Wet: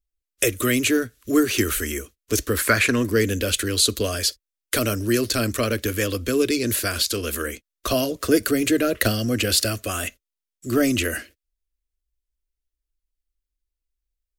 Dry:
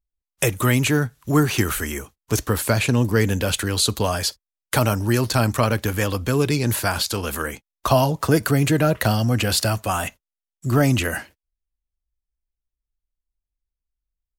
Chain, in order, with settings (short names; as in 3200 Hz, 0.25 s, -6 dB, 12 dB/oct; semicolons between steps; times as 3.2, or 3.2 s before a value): 2.57–3.1 band shelf 1300 Hz +10.5 dB; 8.99–9.55 transient shaper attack +5 dB, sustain 0 dB; fixed phaser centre 360 Hz, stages 4; gain +2 dB